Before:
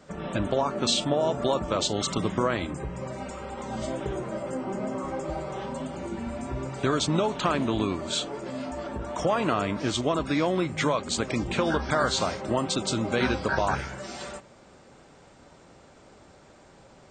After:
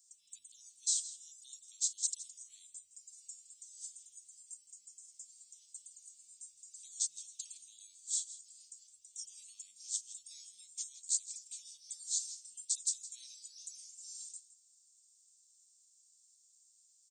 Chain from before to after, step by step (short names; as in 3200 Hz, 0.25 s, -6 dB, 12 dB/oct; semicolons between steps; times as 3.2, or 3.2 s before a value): inverse Chebyshev high-pass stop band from 1600 Hz, stop band 70 dB; echo 0.164 s -15 dB; gain +3.5 dB